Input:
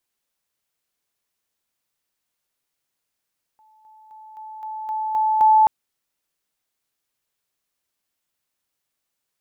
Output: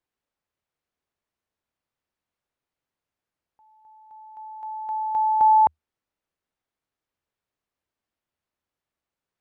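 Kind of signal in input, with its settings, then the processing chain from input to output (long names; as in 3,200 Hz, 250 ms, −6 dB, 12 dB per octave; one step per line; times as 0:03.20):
level staircase 869 Hz −52.5 dBFS, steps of 6 dB, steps 8, 0.26 s 0.00 s
low-pass filter 1,300 Hz 6 dB per octave
parametric band 78 Hz +6.5 dB 0.34 octaves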